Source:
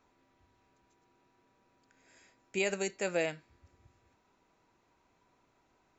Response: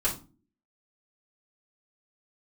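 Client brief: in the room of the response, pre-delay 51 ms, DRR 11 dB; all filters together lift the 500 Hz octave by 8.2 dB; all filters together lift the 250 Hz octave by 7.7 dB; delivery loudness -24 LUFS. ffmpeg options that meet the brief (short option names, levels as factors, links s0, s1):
-filter_complex "[0:a]equalizer=f=250:t=o:g=9,equalizer=f=500:t=o:g=7.5,asplit=2[s0][s1];[1:a]atrim=start_sample=2205,adelay=51[s2];[s1][s2]afir=irnorm=-1:irlink=0,volume=0.106[s3];[s0][s3]amix=inputs=2:normalize=0,volume=1.5"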